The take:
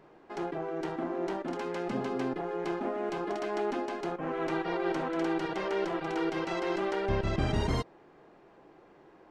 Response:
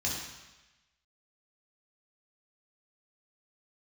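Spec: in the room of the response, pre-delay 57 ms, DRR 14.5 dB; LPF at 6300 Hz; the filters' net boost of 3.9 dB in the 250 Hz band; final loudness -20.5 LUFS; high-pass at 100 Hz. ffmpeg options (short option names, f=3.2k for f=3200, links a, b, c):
-filter_complex "[0:a]highpass=100,lowpass=6.3k,equalizer=f=250:t=o:g=6,asplit=2[a][b];[1:a]atrim=start_sample=2205,adelay=57[c];[b][c]afir=irnorm=-1:irlink=0,volume=-20.5dB[d];[a][d]amix=inputs=2:normalize=0,volume=10dB"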